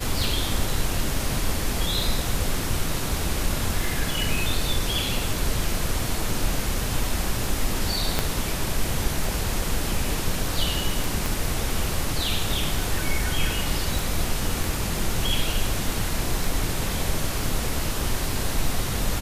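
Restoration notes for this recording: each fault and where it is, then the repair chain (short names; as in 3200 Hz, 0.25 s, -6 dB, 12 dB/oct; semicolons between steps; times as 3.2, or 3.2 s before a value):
tick 33 1/3 rpm
8.19 pop -6 dBFS
11.26 pop
13.99 pop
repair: de-click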